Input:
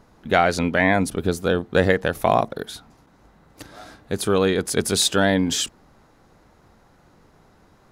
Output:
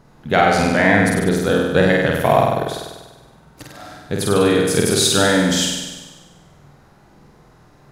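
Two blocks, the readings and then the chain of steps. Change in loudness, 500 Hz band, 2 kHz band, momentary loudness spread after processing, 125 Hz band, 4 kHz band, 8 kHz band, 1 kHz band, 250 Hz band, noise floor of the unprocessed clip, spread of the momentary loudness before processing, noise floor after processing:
+4.5 dB, +4.5 dB, +5.0 dB, 13 LU, +5.5 dB, +4.5 dB, +5.0 dB, +4.5 dB, +5.0 dB, -56 dBFS, 10 LU, -50 dBFS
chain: peaking EQ 140 Hz +9.5 dB 0.31 oct; flutter echo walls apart 8.4 m, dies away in 1.2 s; trim +1 dB

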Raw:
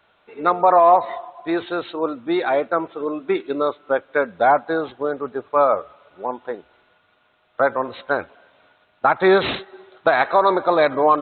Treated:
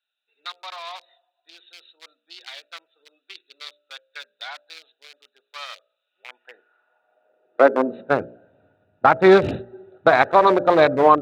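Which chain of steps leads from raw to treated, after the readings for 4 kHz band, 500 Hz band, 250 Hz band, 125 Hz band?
-0.5 dB, -1.0 dB, -0.5 dB, +4.0 dB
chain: local Wiener filter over 41 samples; high-pass sweep 3.9 kHz -> 92 Hz, 6.03–8.44 s; de-hum 59.07 Hz, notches 11; trim +3 dB

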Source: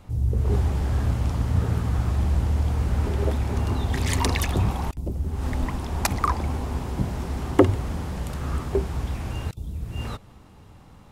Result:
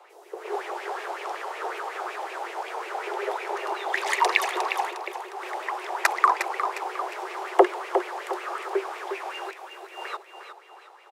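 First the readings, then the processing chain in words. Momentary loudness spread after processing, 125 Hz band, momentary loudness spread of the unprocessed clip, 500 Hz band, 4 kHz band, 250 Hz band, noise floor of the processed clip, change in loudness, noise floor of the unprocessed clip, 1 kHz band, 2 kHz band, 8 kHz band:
16 LU, under -40 dB, 8 LU, +1.5 dB, +0.5 dB, -10.0 dB, -51 dBFS, -2.5 dB, -49 dBFS, +6.5 dB, +7.5 dB, -3.5 dB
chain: Chebyshev high-pass 350 Hz, order 8; treble shelf 8.5 kHz -6 dB; feedback delay 357 ms, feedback 39%, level -8 dB; sweeping bell 5.4 Hz 750–2500 Hz +14 dB; trim -1 dB

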